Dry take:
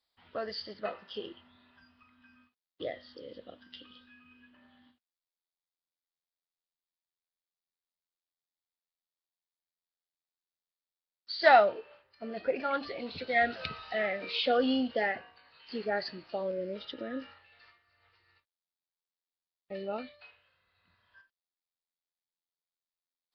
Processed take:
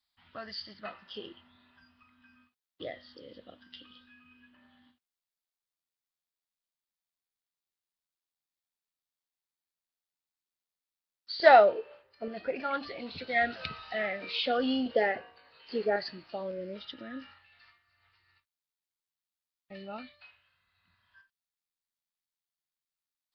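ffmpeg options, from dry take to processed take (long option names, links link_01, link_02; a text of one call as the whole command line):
ffmpeg -i in.wav -af "asetnsamples=nb_out_samples=441:pad=0,asendcmd='1.06 equalizer g -4.5;11.4 equalizer g 7;12.28 equalizer g -3.5;14.86 equalizer g 7;15.96 equalizer g -4.5;16.8 equalizer g -12.5',equalizer=frequency=470:width_type=o:width=0.93:gain=-15" out.wav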